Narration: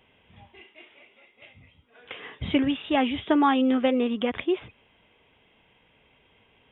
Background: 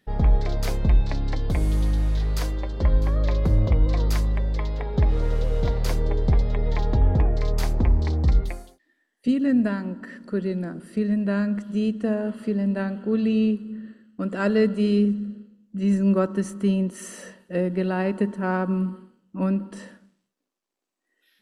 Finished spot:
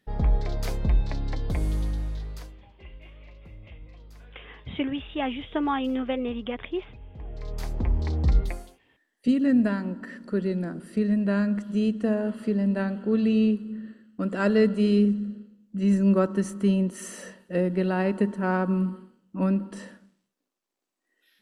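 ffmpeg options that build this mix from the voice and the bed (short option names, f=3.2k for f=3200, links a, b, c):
-filter_complex "[0:a]adelay=2250,volume=-5.5dB[a];[1:a]volume=22dB,afade=t=out:st=1.66:d=0.98:silence=0.0749894,afade=t=in:st=7.13:d=1.41:silence=0.0501187[b];[a][b]amix=inputs=2:normalize=0"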